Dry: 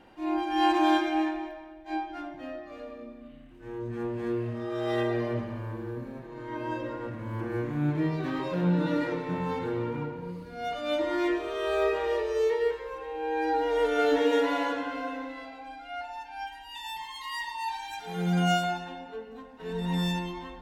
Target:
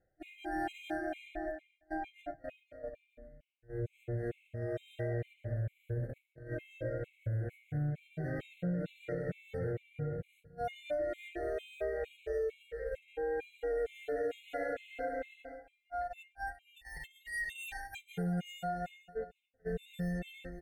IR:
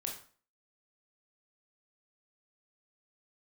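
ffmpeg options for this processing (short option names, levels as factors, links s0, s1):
-filter_complex "[0:a]agate=range=0.0447:threshold=0.0141:ratio=16:detection=peak,asplit=2[s0][s1];[s1]volume=18.8,asoftclip=hard,volume=0.0531,volume=0.282[s2];[s0][s2]amix=inputs=2:normalize=0,asuperstop=centerf=1000:order=8:qfactor=1.8,aecho=1:1:269|538:0.0631|0.0107,areverse,acompressor=mode=upward:threshold=0.0316:ratio=2.5,areverse,firequalizer=gain_entry='entry(130,0);entry(240,-19);entry(520,-4);entry(1200,-15);entry(1700,-8);entry(4700,-23);entry(8800,-7)':delay=0.05:min_phase=1,acompressor=threshold=0.0112:ratio=6,afftfilt=real='re*gt(sin(2*PI*2.2*pts/sr)*(1-2*mod(floor(b*sr/1024/2100),2)),0)':imag='im*gt(sin(2*PI*2.2*pts/sr)*(1-2*mod(floor(b*sr/1024/2100),2)),0)':win_size=1024:overlap=0.75,volume=2.24"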